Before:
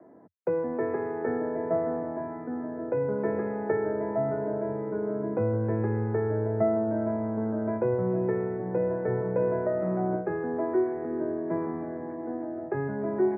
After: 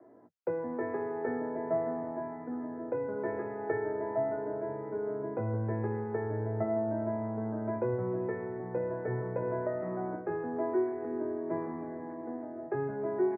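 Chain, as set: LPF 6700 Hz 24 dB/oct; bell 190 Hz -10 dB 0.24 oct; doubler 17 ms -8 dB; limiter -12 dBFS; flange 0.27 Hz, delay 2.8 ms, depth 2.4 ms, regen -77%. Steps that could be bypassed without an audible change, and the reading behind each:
LPF 6700 Hz: input band ends at 1400 Hz; limiter -12 dBFS: input peak -13.5 dBFS

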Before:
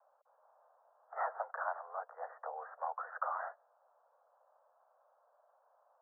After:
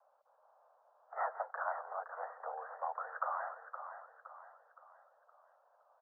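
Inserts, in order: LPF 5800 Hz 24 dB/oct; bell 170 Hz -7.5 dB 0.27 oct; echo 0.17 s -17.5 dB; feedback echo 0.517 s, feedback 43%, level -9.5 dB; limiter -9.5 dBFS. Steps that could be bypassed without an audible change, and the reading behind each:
LPF 5800 Hz: input band ends at 2000 Hz; bell 170 Hz: input band starts at 400 Hz; limiter -9.5 dBFS: input peak -21.5 dBFS

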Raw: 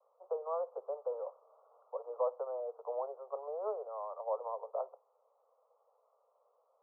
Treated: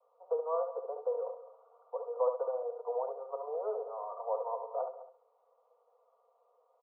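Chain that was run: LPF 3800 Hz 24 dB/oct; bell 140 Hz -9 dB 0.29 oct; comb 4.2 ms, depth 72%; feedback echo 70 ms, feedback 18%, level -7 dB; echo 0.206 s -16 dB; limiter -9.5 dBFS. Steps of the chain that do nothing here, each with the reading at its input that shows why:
LPF 3800 Hz: input band ends at 1400 Hz; bell 140 Hz: input band starts at 360 Hz; limiter -9.5 dBFS: input peak -19.5 dBFS

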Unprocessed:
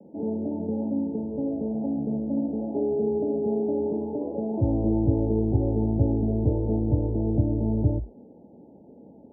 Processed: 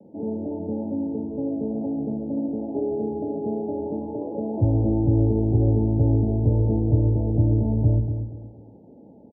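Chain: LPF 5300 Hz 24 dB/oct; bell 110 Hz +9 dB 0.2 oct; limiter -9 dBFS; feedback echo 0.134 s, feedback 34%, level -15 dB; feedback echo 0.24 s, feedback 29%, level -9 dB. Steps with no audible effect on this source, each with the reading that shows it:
LPF 5300 Hz: input band ends at 910 Hz

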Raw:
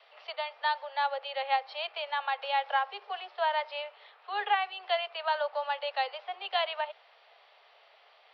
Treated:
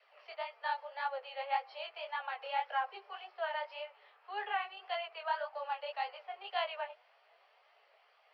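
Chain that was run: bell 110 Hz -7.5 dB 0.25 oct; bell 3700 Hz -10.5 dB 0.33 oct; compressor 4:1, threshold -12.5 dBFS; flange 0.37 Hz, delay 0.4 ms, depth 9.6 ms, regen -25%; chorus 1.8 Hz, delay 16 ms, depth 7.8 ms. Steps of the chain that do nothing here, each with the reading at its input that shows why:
bell 110 Hz: input band starts at 360 Hz; compressor, threshold -12.5 dBFS: input peak -15.0 dBFS

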